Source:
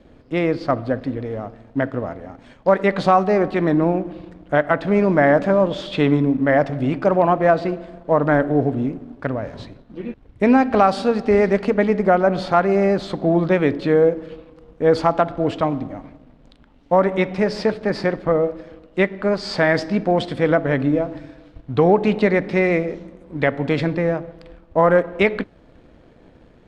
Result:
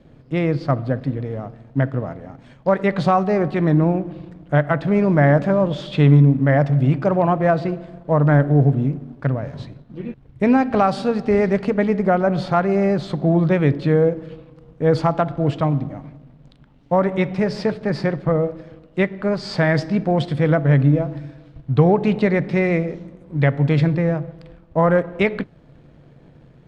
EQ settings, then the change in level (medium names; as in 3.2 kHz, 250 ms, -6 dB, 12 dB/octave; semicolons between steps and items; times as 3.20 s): peaking EQ 140 Hz +14.5 dB 0.54 oct; -2.5 dB